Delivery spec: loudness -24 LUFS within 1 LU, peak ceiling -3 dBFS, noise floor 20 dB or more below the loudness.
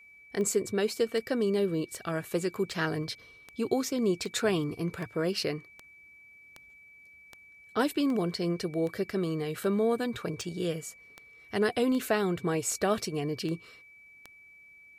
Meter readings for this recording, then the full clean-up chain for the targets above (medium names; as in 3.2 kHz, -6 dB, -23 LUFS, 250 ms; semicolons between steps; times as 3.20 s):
clicks found 19; steady tone 2.3 kHz; tone level -52 dBFS; loudness -30.5 LUFS; peak level -13.5 dBFS; loudness target -24.0 LUFS
-> de-click; band-stop 2.3 kHz, Q 30; trim +6.5 dB